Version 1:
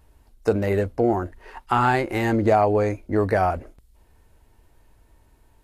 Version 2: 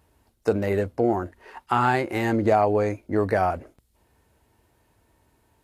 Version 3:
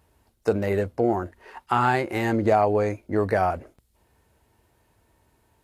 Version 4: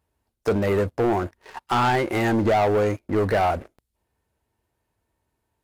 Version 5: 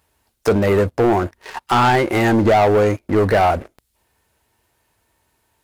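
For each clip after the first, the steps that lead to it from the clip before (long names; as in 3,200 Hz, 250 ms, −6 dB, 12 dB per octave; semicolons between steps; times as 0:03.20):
high-pass filter 89 Hz 12 dB per octave; level −1.5 dB
parametric band 280 Hz −3 dB 0.29 octaves
leveller curve on the samples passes 3; level −6 dB
one half of a high-frequency compander encoder only; level +6 dB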